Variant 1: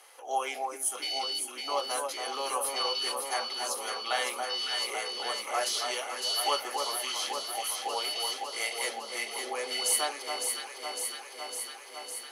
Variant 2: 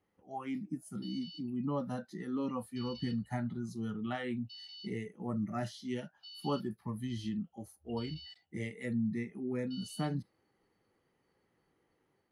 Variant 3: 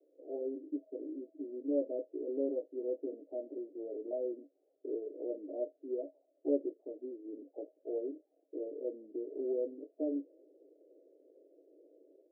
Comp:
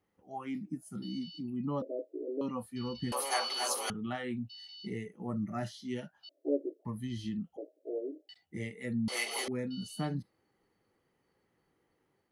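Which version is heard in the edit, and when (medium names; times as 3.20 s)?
2
1.82–2.41 s: from 3
3.12–3.90 s: from 1
6.29–6.85 s: from 3
7.57–8.29 s: from 3
9.08–9.48 s: from 1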